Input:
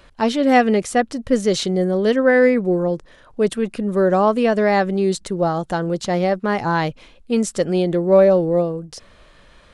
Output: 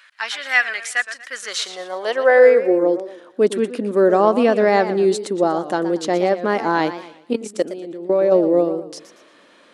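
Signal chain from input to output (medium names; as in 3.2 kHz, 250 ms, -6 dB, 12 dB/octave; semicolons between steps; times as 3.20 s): bass shelf 160 Hz -9.5 dB; 7.33–8.32 s: level held to a coarse grid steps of 18 dB; high-pass sweep 1.7 kHz -> 280 Hz, 1.26–3.18 s; modulated delay 117 ms, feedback 36%, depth 160 cents, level -12.5 dB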